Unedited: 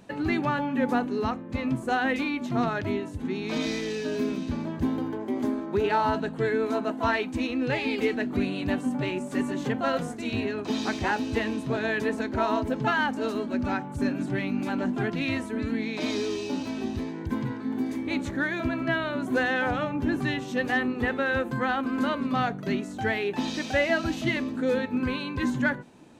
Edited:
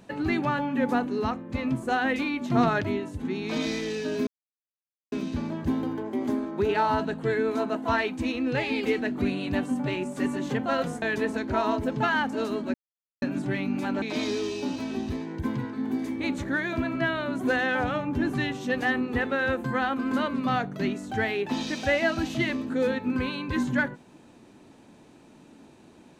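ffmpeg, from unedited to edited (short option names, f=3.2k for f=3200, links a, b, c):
-filter_complex "[0:a]asplit=8[a][b][c][d][e][f][g][h];[a]atrim=end=2.502[i];[b]atrim=start=2.498:end=2.832,asetpts=PTS-STARTPTS,volume=4dB[j];[c]atrim=start=2.828:end=4.27,asetpts=PTS-STARTPTS,afade=t=out:st=1.438:d=0.004:c=hsin,apad=pad_dur=0.85[k];[d]atrim=start=4.27:end=10.172,asetpts=PTS-STARTPTS,afade=t=in:d=0.004:c=hsin[l];[e]atrim=start=11.858:end=13.58,asetpts=PTS-STARTPTS,afade=t=out:st=1.718:d=0.004:c=hsin[m];[f]atrim=start=13.58:end=14.06,asetpts=PTS-STARTPTS,volume=0[n];[g]atrim=start=14.06:end=14.862,asetpts=PTS-STARTPTS,afade=t=in:d=0.004:c=hsin[o];[h]atrim=start=15.888[p];[i][j]acrossfade=d=0.004:c1=hsin:c2=hsin[q];[k][l]concat=n=2:v=0:a=1[r];[q][r]acrossfade=d=0.004:c1=hsin:c2=hsin[s];[m][n][o]concat=n=3:v=0:a=1[t];[s][t]acrossfade=d=0.004:c1=hsin:c2=hsin[u];[u][p]acrossfade=d=0.004:c1=hsin:c2=hsin"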